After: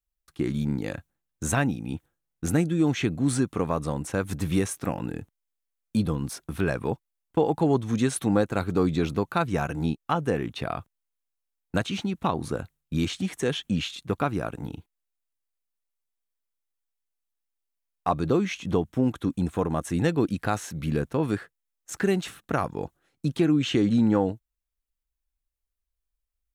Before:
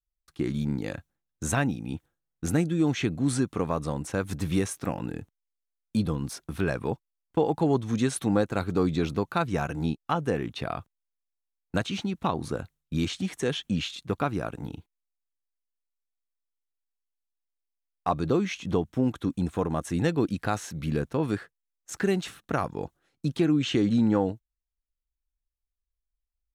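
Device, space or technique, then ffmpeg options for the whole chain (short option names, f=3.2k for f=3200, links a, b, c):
exciter from parts: -filter_complex "[0:a]asplit=2[a][b];[b]highpass=3.5k,asoftclip=type=tanh:threshold=-32dB,highpass=4.8k,volume=-9dB[c];[a][c]amix=inputs=2:normalize=0,volume=1.5dB"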